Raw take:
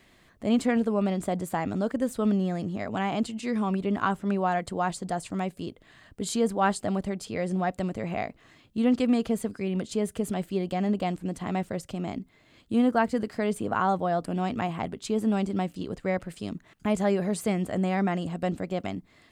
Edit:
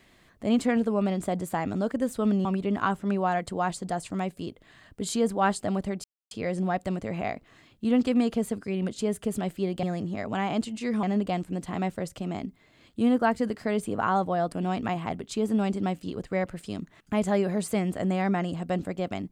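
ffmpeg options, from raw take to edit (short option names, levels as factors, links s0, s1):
-filter_complex "[0:a]asplit=5[s0][s1][s2][s3][s4];[s0]atrim=end=2.452[s5];[s1]atrim=start=3.648:end=7.24,asetpts=PTS-STARTPTS,afade=t=out:st=3.588:d=0.004:c=hsin,apad=pad_dur=0.27[s6];[s2]atrim=start=7.24:end=10.762,asetpts=PTS-STARTPTS,afade=t=in:d=0.004:c=hsin[s7];[s3]atrim=start=2.448:end=3.652[s8];[s4]atrim=start=10.758[s9];[s6][s7]concat=n=2:v=0:a=1[s10];[s5][s10]acrossfade=d=0.004:c1=hsin:c2=hsin[s11];[s11][s8]acrossfade=d=0.004:c1=hsin:c2=hsin[s12];[s12][s9]acrossfade=d=0.004:c1=hsin:c2=hsin"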